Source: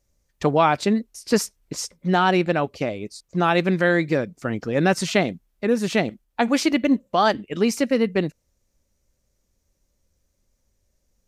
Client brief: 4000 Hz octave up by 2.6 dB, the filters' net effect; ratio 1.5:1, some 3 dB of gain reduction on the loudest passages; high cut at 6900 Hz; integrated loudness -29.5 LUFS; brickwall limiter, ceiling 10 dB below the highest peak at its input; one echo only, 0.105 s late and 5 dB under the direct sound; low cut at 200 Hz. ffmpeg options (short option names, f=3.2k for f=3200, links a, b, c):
-af "highpass=200,lowpass=6.9k,equalizer=f=4k:t=o:g=4,acompressor=threshold=-22dB:ratio=1.5,alimiter=limit=-16dB:level=0:latency=1,aecho=1:1:105:0.562,volume=-2.5dB"